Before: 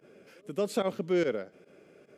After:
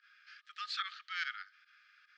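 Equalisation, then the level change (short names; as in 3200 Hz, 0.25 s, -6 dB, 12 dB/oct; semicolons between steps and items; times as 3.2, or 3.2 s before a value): rippled Chebyshev high-pass 1200 Hz, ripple 9 dB; LPF 4500 Hz 24 dB/oct; +9.0 dB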